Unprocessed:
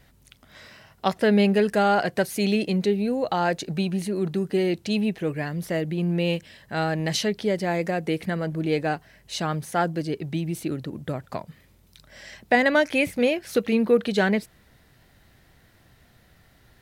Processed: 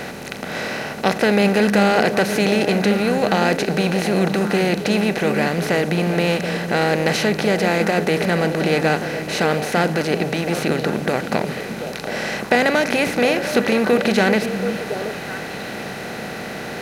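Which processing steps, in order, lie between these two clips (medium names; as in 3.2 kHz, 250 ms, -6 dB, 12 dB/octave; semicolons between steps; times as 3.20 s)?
spectral levelling over time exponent 0.4; repeats whose band climbs or falls 364 ms, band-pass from 190 Hz, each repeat 1.4 oct, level -4 dB; trim -1 dB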